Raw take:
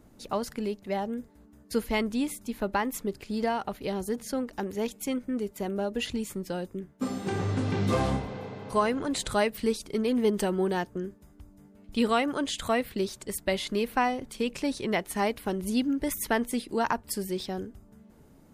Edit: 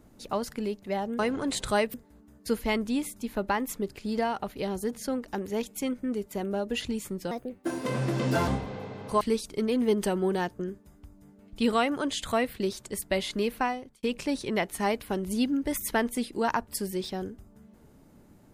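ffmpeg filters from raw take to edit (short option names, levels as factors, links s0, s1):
-filter_complex "[0:a]asplit=7[s0][s1][s2][s3][s4][s5][s6];[s0]atrim=end=1.192[s7];[s1]atrim=start=8.818:end=9.572[s8];[s2]atrim=start=1.188:end=6.564[s9];[s3]atrim=start=6.56:end=8.09,asetpts=PTS-STARTPTS,asetrate=57771,aresample=44100,atrim=end_sample=51506,asetpts=PTS-STARTPTS[s10];[s4]atrim=start=8.086:end=8.822[s11];[s5]atrim=start=9.568:end=14.39,asetpts=PTS-STARTPTS,afade=t=out:st=4.302:d=0.52[s12];[s6]atrim=start=14.39,asetpts=PTS-STARTPTS,afade=t=in:d=0.004:c=hsin[s13];[s7][s8]acrossfade=d=0.004:c1=hsin:c2=hsin[s14];[s14][s9]acrossfade=d=0.004:c1=hsin:c2=hsin[s15];[s15][s10]acrossfade=d=0.004:c1=hsin:c2=hsin[s16];[s16][s11]acrossfade=d=0.004:c1=hsin:c2=hsin[s17];[s12][s13]concat=n=2:v=0:a=1[s18];[s17][s18]acrossfade=d=0.004:c1=hsin:c2=hsin"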